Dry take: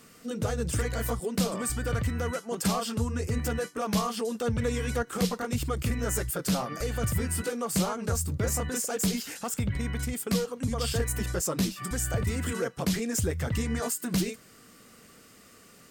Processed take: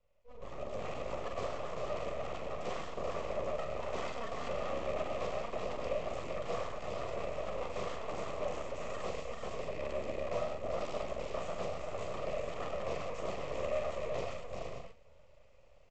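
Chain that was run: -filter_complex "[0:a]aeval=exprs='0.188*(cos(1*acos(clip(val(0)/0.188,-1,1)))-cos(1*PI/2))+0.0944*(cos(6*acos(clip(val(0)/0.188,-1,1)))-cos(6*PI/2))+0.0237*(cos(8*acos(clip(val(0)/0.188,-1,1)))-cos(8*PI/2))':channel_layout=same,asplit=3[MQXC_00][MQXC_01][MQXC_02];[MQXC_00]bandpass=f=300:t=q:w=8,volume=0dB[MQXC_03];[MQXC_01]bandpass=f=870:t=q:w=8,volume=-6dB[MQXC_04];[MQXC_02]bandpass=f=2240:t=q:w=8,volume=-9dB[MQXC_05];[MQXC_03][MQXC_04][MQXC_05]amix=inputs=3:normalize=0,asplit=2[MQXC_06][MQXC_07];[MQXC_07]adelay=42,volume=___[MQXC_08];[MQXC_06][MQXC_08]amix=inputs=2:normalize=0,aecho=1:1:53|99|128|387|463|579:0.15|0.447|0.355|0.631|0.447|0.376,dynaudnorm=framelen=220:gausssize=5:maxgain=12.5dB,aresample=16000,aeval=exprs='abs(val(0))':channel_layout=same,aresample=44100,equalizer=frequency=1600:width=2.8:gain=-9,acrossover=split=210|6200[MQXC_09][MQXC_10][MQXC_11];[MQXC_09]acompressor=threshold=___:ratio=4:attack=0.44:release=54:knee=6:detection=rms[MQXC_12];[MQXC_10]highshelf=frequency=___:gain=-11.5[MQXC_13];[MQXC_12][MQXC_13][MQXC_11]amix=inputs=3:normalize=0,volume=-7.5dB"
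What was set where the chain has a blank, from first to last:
-5dB, -33dB, 3400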